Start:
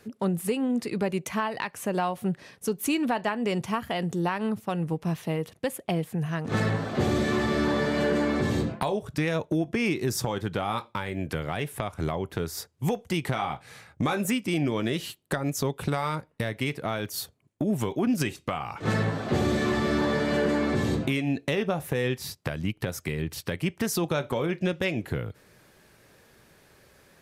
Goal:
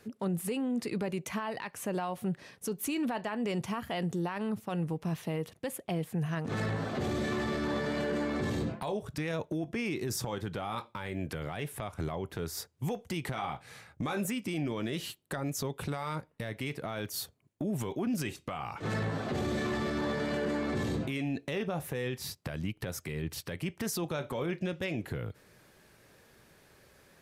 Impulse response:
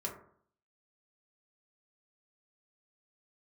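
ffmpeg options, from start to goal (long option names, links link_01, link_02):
-af "alimiter=limit=-22.5dB:level=0:latency=1:release=17,volume=-3dB"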